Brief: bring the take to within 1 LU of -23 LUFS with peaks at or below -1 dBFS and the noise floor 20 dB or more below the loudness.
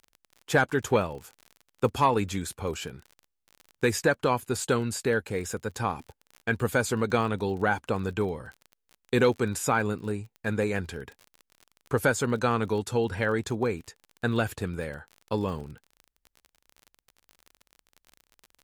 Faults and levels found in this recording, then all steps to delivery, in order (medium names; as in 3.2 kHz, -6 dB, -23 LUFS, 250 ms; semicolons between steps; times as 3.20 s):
tick rate 36 per s; loudness -28.0 LUFS; peak level -10.5 dBFS; loudness target -23.0 LUFS
-> de-click; trim +5 dB